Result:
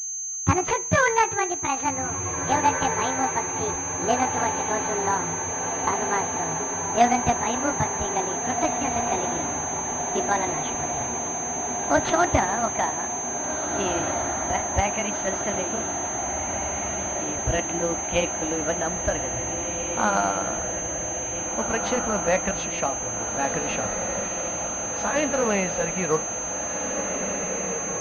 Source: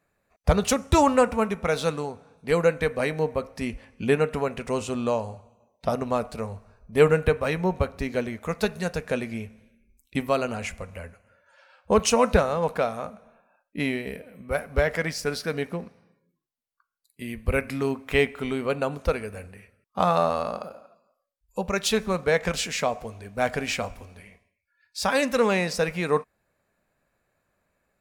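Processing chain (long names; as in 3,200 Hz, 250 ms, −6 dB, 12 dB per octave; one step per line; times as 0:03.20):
pitch glide at a constant tempo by +10.5 semitones ending unshifted
feedback delay with all-pass diffusion 1,838 ms, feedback 75%, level −6 dB
switching amplifier with a slow clock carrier 6,300 Hz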